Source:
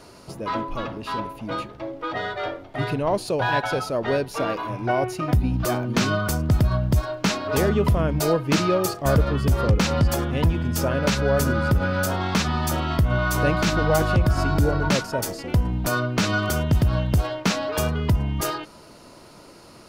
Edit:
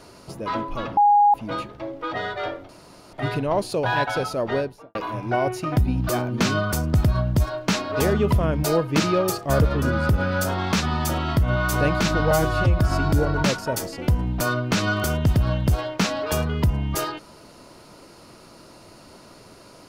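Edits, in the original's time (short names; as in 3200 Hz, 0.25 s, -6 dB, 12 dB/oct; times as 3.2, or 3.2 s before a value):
0.97–1.34 bleep 823 Hz -12 dBFS
2.69 insert room tone 0.44 s
4.03–4.51 studio fade out
9.38–11.44 cut
13.93–14.25 stretch 1.5×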